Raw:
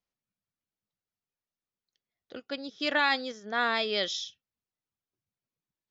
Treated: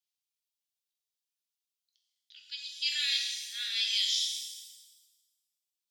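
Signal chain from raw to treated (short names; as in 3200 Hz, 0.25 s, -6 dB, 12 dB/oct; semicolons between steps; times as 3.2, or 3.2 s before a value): inverse Chebyshev high-pass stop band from 1100 Hz, stop band 50 dB; shimmer reverb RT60 1.2 s, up +7 st, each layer -8 dB, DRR 0 dB; gain +2 dB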